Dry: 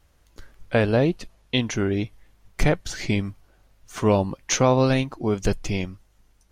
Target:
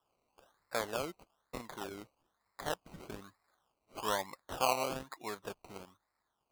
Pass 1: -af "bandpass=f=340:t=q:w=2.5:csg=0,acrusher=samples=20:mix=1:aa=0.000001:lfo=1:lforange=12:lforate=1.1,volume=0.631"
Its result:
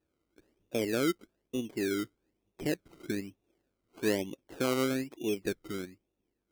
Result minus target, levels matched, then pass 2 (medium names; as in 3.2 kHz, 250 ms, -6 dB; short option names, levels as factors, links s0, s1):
1 kHz band -11.0 dB
-af "bandpass=f=1100:t=q:w=2.5:csg=0,acrusher=samples=20:mix=1:aa=0.000001:lfo=1:lforange=12:lforate=1.1,volume=0.631"